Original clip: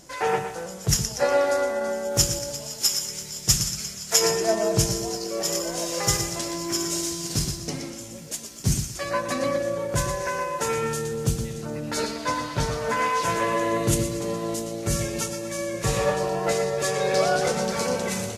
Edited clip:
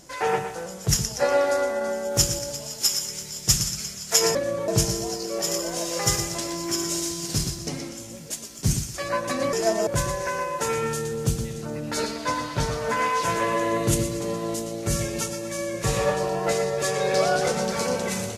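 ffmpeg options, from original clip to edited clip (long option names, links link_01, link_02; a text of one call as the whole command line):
ffmpeg -i in.wav -filter_complex "[0:a]asplit=5[link_01][link_02][link_03][link_04][link_05];[link_01]atrim=end=4.352[link_06];[link_02]atrim=start=9.538:end=9.872[link_07];[link_03]atrim=start=4.688:end=9.542[link_08];[link_04]atrim=start=4.348:end=4.692[link_09];[link_05]atrim=start=9.868[link_10];[link_06][link_07]acrossfade=duration=0.004:curve1=hsin:curve2=hsin[link_11];[link_11][link_08]acrossfade=duration=0.004:curve1=hsin:curve2=hsin[link_12];[link_12][link_09]acrossfade=duration=0.004:curve1=hsin:curve2=hsin[link_13];[link_13][link_10]acrossfade=duration=0.004:curve1=hsin:curve2=hsin" out.wav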